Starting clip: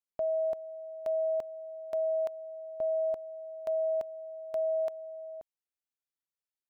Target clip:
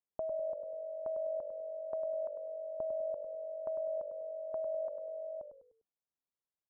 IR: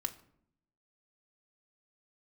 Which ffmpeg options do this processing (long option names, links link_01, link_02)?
-filter_complex "[0:a]acompressor=threshold=-36dB:ratio=6,lowpass=frequency=1200:width=0.5412,lowpass=frequency=1200:width=1.3066,asplit=2[link_01][link_02];[link_02]asplit=4[link_03][link_04][link_05][link_06];[link_03]adelay=100,afreqshift=-48,volume=-8dB[link_07];[link_04]adelay=200,afreqshift=-96,volume=-16.4dB[link_08];[link_05]adelay=300,afreqshift=-144,volume=-24.8dB[link_09];[link_06]adelay=400,afreqshift=-192,volume=-33.2dB[link_10];[link_07][link_08][link_09][link_10]amix=inputs=4:normalize=0[link_11];[link_01][link_11]amix=inputs=2:normalize=0"